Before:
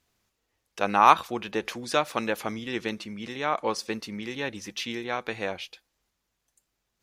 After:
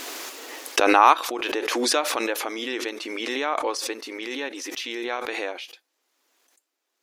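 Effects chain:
linear-phase brick-wall high-pass 250 Hz
background raised ahead of every attack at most 21 dB per second

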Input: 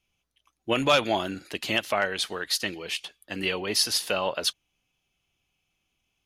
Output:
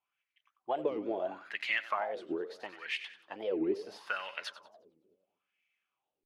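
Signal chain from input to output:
downward compressor, threshold −25 dBFS, peak gain reduction 9 dB
echo with a time of its own for lows and highs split 310 Hz, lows 237 ms, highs 93 ms, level −13 dB
LFO wah 0.75 Hz 370–2,100 Hz, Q 4.6
wow of a warped record 45 rpm, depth 250 cents
level +5.5 dB

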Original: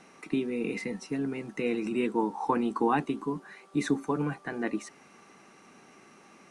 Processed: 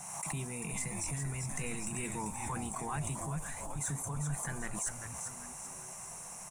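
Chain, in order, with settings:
drawn EQ curve 150 Hz 0 dB, 280 Hz −27 dB, 1,400 Hz −12 dB, 4,600 Hz −13 dB, 7,300 Hz +13 dB
reversed playback
downward compressor 6 to 1, threshold −47 dBFS, peak gain reduction 16 dB
reversed playback
noise in a band 640–1,100 Hz −68 dBFS
leveller curve on the samples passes 1
on a send: echo with shifted repeats 392 ms, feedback 44%, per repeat −130 Hz, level −6 dB
on the sum: background raised ahead of every attack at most 33 dB per second
level +7.5 dB

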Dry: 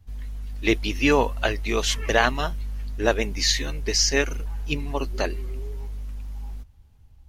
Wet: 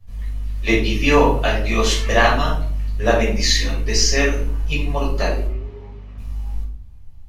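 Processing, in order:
0:05.46–0:06.18: band-pass filter 100–2,900 Hz
rectangular room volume 550 cubic metres, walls furnished, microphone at 5.9 metres
level −3.5 dB

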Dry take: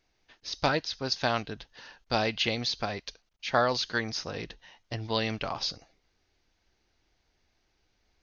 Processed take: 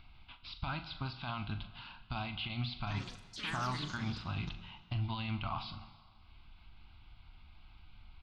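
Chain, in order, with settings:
noise gate −57 dBFS, range −7 dB
parametric band 450 Hz −12 dB 2.1 octaves
downward compressor, threshold −31 dBFS, peak gain reduction 7.5 dB
brickwall limiter −30.5 dBFS, peak gain reduction 12.5 dB
upward compression, threshold −46 dBFS
high-frequency loss of the air 330 metres
phaser with its sweep stopped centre 1,800 Hz, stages 6
0:02.78–0:04.94: delay with pitch and tempo change per echo 94 ms, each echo +5 semitones, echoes 3, each echo −6 dB
double-tracking delay 40 ms −11 dB
dense smooth reverb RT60 1.7 s, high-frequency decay 0.95×, DRR 11 dB
level +8.5 dB

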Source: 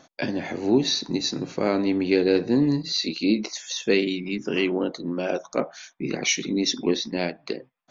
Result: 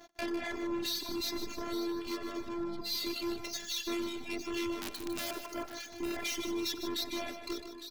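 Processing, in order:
running median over 5 samples
0:01.38–0:02.00: bass and treble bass +10 dB, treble +5 dB
in parallel at −2 dB: compressor whose output falls as the input rises −27 dBFS, ratio −0.5
on the sum: tube saturation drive 26 dB, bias 0.35
phases set to zero 343 Hz
0:04.81–0:05.31: wrap-around overflow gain 22.5 dB
notch filter 500 Hz, Q 16
multi-tap delay 93/321/858 ms −8.5/−13.5/−10.5 dB
reverb reduction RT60 1.1 s
noise gate −56 dBFS, range −8 dB
on a send: repeating echo 153 ms, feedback 33%, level −9.5 dB
on the sum: level −3.5 dB

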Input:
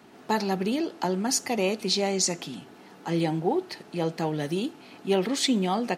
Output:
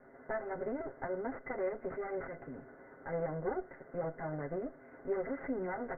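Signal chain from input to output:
lower of the sound and its delayed copy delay 7.5 ms
downward compressor 1.5 to 1, threshold −38 dBFS, peak gain reduction 6.5 dB
Chebyshev low-pass with heavy ripple 2,100 Hz, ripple 9 dB
level +1 dB

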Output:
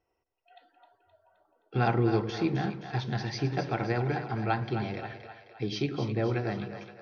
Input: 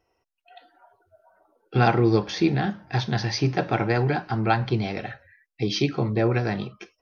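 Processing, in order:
high-shelf EQ 5,000 Hz −7 dB
on a send: echo with a time of its own for lows and highs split 460 Hz, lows 100 ms, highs 261 ms, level −9 dB
on the sum: level −7 dB

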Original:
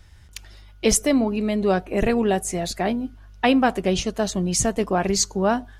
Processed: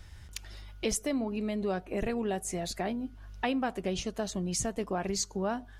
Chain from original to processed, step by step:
downward compressor 2 to 1, threshold −38 dBFS, peak gain reduction 13 dB

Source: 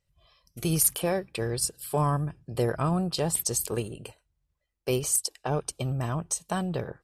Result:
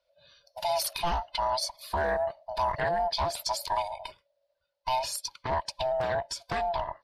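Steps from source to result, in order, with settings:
neighbouring bands swapped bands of 500 Hz
high shelf with overshoot 6,100 Hz −11.5 dB, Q 3
brickwall limiter −20.5 dBFS, peak gain reduction 8 dB
graphic EQ with 15 bands 250 Hz −10 dB, 1,000 Hz +4 dB, 10,000 Hz +7 dB
highs frequency-modulated by the lows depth 0.34 ms

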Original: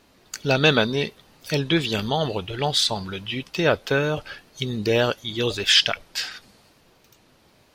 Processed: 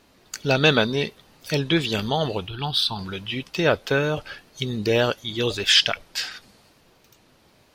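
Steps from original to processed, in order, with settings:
0:02.48–0:02.99: phaser with its sweep stopped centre 2,000 Hz, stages 6

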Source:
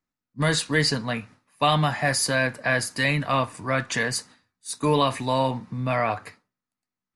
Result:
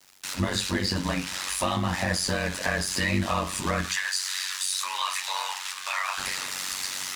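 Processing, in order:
spike at every zero crossing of −17.5 dBFS
harmonic generator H 2 −26 dB, 5 −33 dB, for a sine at −9 dBFS
automatic gain control gain up to 3.5 dB
noise gate with hold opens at −16 dBFS
high-frequency loss of the air 73 metres
brickwall limiter −12 dBFS, peak gain reduction 5.5 dB
0:03.88–0:06.18: high-pass filter 1,100 Hz 24 dB per octave
downward compressor 3 to 1, threshold −34 dBFS, peak gain reduction 13 dB
convolution reverb RT60 0.25 s, pre-delay 5 ms, DRR 0 dB
ring modulation 47 Hz
centre clipping without the shift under −53 dBFS
level +5.5 dB

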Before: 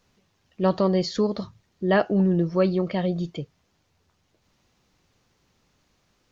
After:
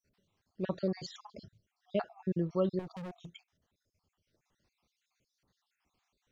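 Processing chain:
time-frequency cells dropped at random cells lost 55%
0:02.79–0:03.31: hard clipping −31.5 dBFS, distortion −11 dB
level −9 dB

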